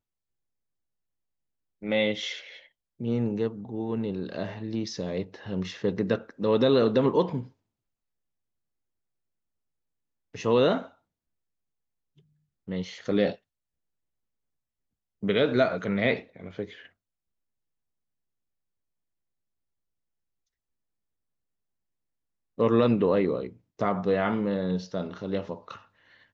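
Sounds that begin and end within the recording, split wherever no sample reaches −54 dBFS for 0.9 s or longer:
0:01.82–0:07.52
0:10.34–0:10.95
0:12.18–0:13.36
0:15.23–0:16.89

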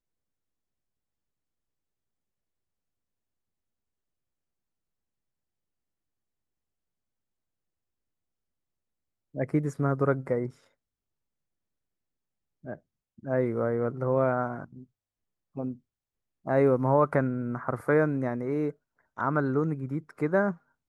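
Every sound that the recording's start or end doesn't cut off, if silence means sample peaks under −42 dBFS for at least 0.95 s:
0:09.35–0:10.51

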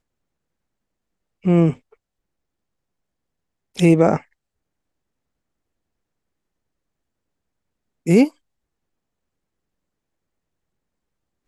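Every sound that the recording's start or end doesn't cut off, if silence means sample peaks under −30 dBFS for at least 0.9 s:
0:01.45–0:01.73
0:03.78–0:04.18
0:08.07–0:08.28

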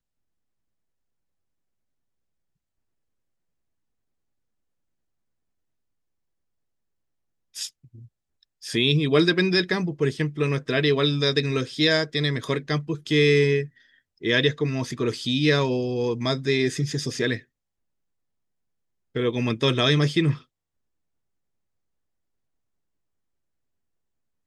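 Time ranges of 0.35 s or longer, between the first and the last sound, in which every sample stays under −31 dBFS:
0:07.67–0:08.64
0:13.65–0:14.24
0:17.38–0:19.16

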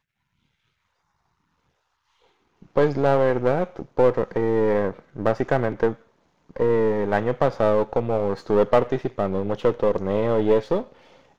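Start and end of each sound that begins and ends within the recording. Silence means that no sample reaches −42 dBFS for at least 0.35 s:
0:02.62–0:06.02

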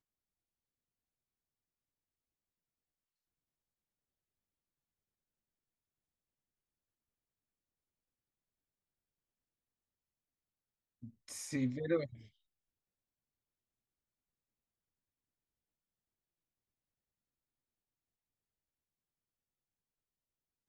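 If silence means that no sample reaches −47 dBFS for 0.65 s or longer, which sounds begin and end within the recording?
0:11.03–0:12.21

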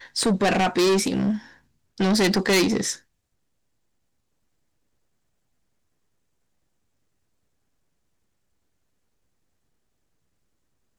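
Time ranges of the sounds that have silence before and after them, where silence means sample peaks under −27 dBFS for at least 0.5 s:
0:02.00–0:02.93

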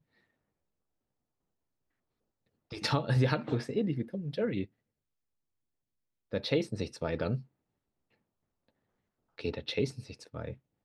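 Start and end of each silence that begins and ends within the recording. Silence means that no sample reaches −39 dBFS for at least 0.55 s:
0:04.64–0:06.33
0:07.40–0:09.38

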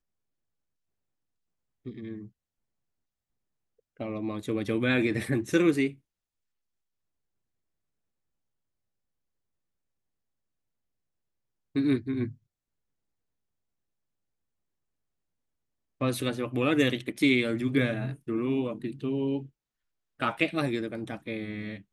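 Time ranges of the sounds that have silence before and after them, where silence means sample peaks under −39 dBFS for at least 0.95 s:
0:01.86–0:02.26
0:04.00–0:05.92
0:11.76–0:12.32

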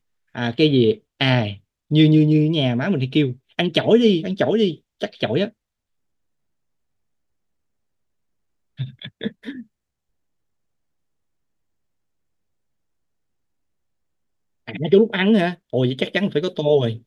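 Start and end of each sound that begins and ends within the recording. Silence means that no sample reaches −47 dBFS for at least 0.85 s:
0:08.78–0:09.63

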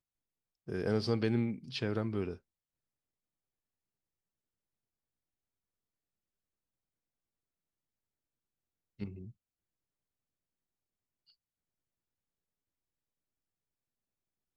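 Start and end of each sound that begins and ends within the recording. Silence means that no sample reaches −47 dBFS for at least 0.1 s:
0:00.68–0:02.36
0:08.99–0:09.30

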